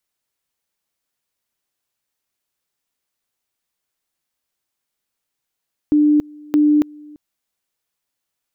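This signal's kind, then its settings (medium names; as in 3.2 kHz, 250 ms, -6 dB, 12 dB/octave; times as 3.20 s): two-level tone 298 Hz -10 dBFS, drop 26 dB, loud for 0.28 s, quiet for 0.34 s, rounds 2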